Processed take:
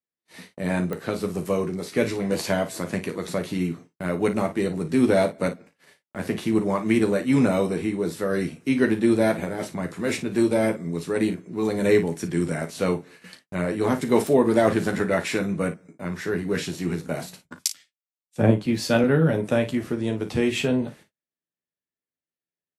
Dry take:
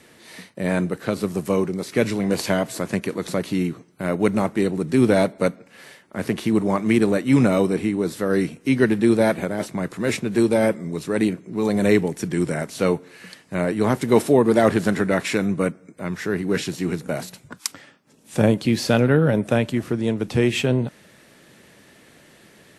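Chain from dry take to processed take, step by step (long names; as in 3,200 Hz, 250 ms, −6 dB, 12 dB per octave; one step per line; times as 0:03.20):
noise gate −42 dBFS, range −46 dB
ambience of single reflections 12 ms −6 dB, 36 ms −12 dB, 55 ms −12.5 dB
digital clicks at 0:00.93/0:14.27, −14 dBFS
0:17.65–0:19.04: multiband upward and downward expander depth 100%
level −4 dB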